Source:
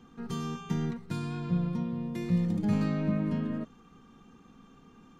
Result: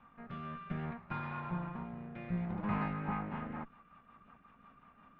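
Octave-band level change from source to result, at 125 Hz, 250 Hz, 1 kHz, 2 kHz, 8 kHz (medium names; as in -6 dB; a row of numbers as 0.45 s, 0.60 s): -9.5 dB, -10.5 dB, +3.0 dB, +0.5 dB, no reading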